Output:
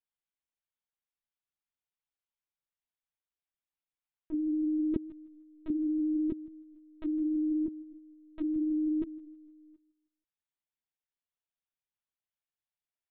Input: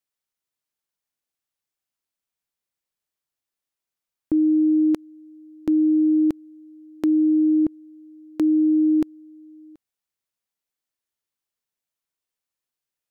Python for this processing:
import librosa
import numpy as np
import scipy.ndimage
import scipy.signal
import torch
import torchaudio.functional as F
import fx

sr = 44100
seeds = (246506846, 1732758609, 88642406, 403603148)

y = scipy.signal.sosfilt(scipy.signal.butter(2, 370.0, 'highpass', fs=sr, output='sos'), x)
y = fx.echo_feedback(y, sr, ms=158, feedback_pct=40, wet_db=-17.0)
y = fx.lpc_vocoder(y, sr, seeds[0], excitation='pitch_kept', order=10)
y = F.gain(torch.from_numpy(y), -8.5).numpy()